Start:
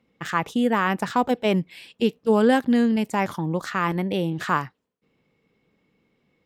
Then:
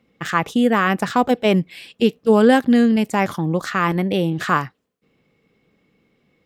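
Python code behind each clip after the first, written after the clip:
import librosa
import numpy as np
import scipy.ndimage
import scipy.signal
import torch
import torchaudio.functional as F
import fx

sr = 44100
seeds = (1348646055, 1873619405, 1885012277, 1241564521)

y = fx.notch(x, sr, hz=930.0, q=9.4)
y = y * librosa.db_to_amplitude(5.0)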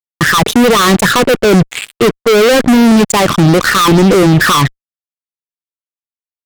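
y = fx.envelope_sharpen(x, sr, power=2.0)
y = fx.fuzz(y, sr, gain_db=32.0, gate_db=-36.0)
y = fx.dynamic_eq(y, sr, hz=950.0, q=0.7, threshold_db=-29.0, ratio=4.0, max_db=-5)
y = y * librosa.db_to_amplitude(9.0)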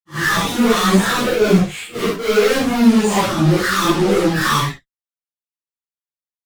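y = fx.phase_scramble(x, sr, seeds[0], window_ms=200)
y = fx.ensemble(y, sr)
y = y * librosa.db_to_amplitude(-4.0)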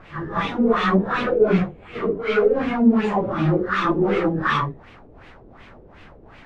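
y = fx.dmg_noise_colour(x, sr, seeds[1], colour='pink', level_db=-39.0)
y = fx.filter_lfo_lowpass(y, sr, shape='sine', hz=2.7, low_hz=420.0, high_hz=2600.0, q=1.9)
y = y * librosa.db_to_amplitude(-6.0)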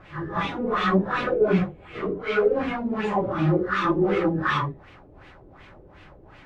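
y = fx.notch_comb(x, sr, f0_hz=230.0)
y = y * librosa.db_to_amplitude(-1.5)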